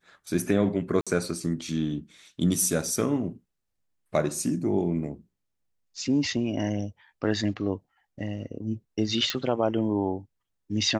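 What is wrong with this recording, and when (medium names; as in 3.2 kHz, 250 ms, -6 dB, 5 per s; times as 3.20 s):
1.01–1.07 s: dropout 56 ms
9.30 s: pop -11 dBFS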